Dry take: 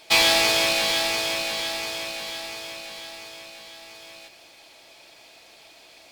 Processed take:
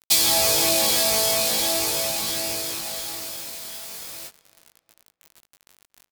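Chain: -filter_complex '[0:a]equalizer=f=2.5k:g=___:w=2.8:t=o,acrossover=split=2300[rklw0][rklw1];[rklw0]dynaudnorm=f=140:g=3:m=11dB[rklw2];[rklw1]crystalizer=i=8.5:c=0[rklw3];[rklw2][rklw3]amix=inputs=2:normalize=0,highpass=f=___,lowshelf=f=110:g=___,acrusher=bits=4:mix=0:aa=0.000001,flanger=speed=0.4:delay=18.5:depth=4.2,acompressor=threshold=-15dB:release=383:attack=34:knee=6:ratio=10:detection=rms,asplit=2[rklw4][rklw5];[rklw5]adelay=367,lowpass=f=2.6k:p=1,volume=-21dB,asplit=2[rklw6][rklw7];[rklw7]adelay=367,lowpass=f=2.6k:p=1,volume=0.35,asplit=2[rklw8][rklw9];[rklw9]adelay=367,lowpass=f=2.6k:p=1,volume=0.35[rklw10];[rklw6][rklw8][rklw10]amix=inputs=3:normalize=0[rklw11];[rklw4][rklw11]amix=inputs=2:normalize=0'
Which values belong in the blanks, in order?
-7.5, 49, 7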